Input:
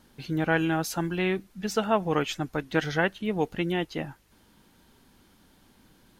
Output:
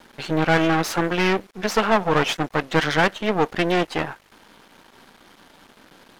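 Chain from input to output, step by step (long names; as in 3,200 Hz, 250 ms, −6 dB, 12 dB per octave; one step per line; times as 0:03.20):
half-wave rectification
mid-hump overdrive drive 20 dB, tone 2,300 Hz, clips at −11.5 dBFS
level +5.5 dB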